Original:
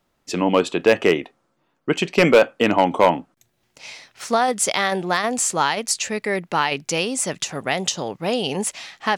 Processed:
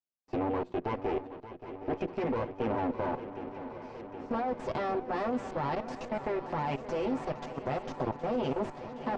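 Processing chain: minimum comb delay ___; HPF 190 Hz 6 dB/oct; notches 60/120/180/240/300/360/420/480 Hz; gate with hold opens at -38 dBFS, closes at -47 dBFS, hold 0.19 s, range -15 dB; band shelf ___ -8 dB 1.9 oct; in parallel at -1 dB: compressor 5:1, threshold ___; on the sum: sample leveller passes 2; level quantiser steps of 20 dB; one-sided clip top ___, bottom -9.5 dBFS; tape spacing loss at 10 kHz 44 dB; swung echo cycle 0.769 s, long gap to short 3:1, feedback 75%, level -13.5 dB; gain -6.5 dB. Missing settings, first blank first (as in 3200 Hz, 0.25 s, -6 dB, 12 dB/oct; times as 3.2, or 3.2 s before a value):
8 ms, 2200 Hz, -33 dBFS, -23 dBFS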